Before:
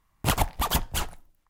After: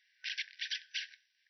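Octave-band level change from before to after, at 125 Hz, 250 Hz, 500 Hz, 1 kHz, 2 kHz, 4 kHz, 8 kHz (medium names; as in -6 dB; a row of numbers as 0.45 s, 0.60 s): under -40 dB, under -40 dB, under -40 dB, under -40 dB, -5.5 dB, -5.5 dB, -19.0 dB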